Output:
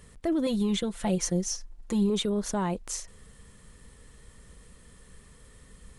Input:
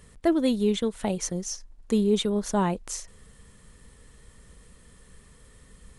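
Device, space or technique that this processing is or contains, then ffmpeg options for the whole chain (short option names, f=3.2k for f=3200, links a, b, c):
soft clipper into limiter: -filter_complex "[0:a]asoftclip=type=tanh:threshold=-14dB,alimiter=limit=-20.5dB:level=0:latency=1:release=18,asettb=1/sr,asplit=3[a][b][c];[a]atrim=end=0.464[d];[b]atrim=start=0.46:end=2.1,asetpts=PTS-STARTPTS,afade=t=in:d=0.004:c=qsin,afade=t=out:st=1.636:d=0.004:c=qsin,aecho=1:1:5.8:0.66,atrim=end_sample=72324[e];[c]atrim=start=2.096[f];[d][e]acrossfade=d=0.004:c1=hsin:c2=qsin[g];[g][f]acrossfade=d=0.004:c1=qsin:c2=hsin"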